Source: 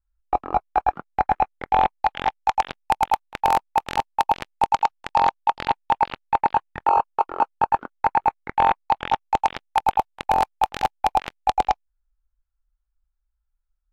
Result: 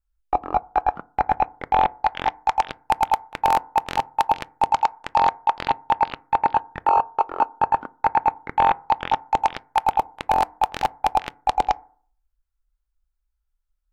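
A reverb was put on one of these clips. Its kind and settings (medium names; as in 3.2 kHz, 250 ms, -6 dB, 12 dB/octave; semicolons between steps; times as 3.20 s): FDN reverb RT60 0.49 s, low-frequency decay 1.1×, high-frequency decay 0.3×, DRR 19.5 dB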